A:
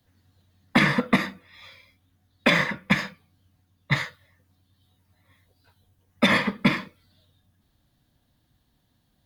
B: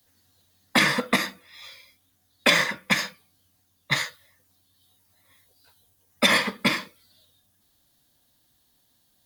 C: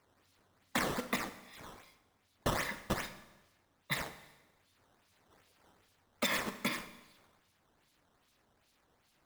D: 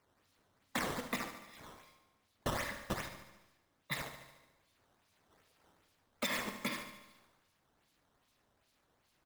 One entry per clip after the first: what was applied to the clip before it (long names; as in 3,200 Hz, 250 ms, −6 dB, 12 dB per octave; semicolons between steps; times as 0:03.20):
bass and treble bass −9 dB, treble +12 dB
downward compressor 2 to 1, threshold −29 dBFS, peak gain reduction 8.5 dB; sample-and-hold swept by an LFO 11×, swing 160% 2.5 Hz; four-comb reverb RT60 1.1 s, combs from 29 ms, DRR 12 dB; level −6.5 dB
repeating echo 73 ms, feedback 59%, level −10.5 dB; level −3.5 dB